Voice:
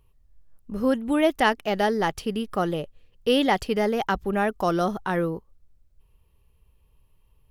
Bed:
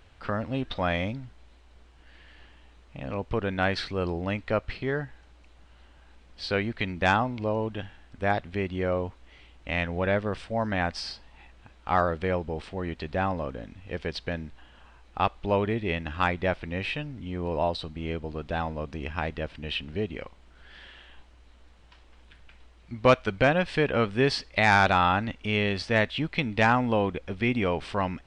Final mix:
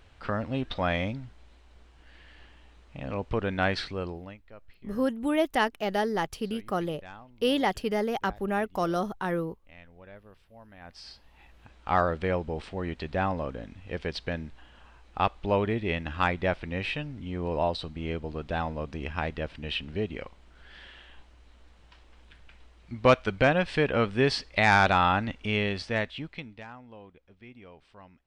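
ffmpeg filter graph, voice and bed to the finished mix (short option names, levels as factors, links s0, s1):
-filter_complex "[0:a]adelay=4150,volume=0.596[s0];[1:a]volume=13.3,afade=t=out:st=3.75:d=0.64:silence=0.0707946,afade=t=in:st=10.8:d=0.95:silence=0.0707946,afade=t=out:st=25.45:d=1.19:silence=0.0707946[s1];[s0][s1]amix=inputs=2:normalize=0"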